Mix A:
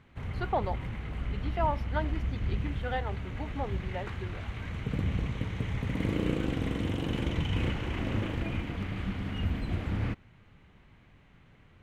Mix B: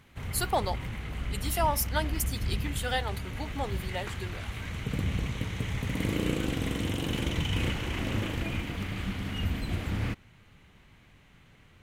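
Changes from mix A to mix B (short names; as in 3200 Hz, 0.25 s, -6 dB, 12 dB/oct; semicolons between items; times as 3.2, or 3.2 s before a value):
speech: remove air absorption 300 m; master: remove LPF 1900 Hz 6 dB/oct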